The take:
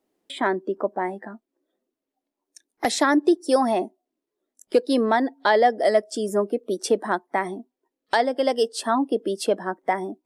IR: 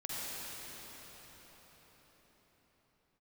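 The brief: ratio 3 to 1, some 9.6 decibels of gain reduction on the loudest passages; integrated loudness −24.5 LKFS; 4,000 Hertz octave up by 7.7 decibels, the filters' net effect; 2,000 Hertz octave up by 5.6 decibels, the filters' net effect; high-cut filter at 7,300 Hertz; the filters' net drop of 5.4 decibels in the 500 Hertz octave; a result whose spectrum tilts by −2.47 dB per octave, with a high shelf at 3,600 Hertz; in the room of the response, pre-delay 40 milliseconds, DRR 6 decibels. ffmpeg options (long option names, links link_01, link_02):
-filter_complex "[0:a]lowpass=7300,equalizer=frequency=500:width_type=o:gain=-7.5,equalizer=frequency=2000:width_type=o:gain=5,highshelf=frequency=3600:gain=7,equalizer=frequency=4000:width_type=o:gain=4,acompressor=threshold=-27dB:ratio=3,asplit=2[link_01][link_02];[1:a]atrim=start_sample=2205,adelay=40[link_03];[link_02][link_03]afir=irnorm=-1:irlink=0,volume=-9.5dB[link_04];[link_01][link_04]amix=inputs=2:normalize=0,volume=5.5dB"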